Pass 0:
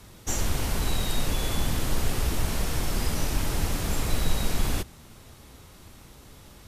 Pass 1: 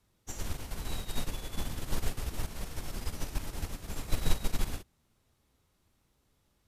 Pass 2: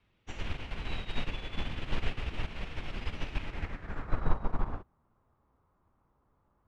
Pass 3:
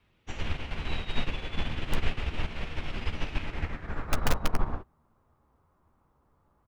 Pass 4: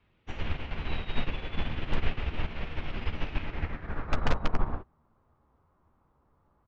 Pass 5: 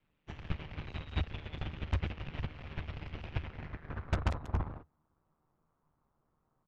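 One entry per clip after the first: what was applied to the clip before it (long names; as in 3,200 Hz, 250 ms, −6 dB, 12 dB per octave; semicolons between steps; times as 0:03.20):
expander for the loud parts 2.5 to 1, over −32 dBFS
low-pass filter sweep 2,700 Hz → 1,100 Hz, 0:03.40–0:04.36
in parallel at −3 dB: wrap-around overflow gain 17.5 dB; on the sum: double-tracking delay 13 ms −11.5 dB; level −1 dB
Gaussian smoothing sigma 1.8 samples
harmonic generator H 4 −11 dB, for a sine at −12 dBFS; ring modulation 76 Hz; level −6 dB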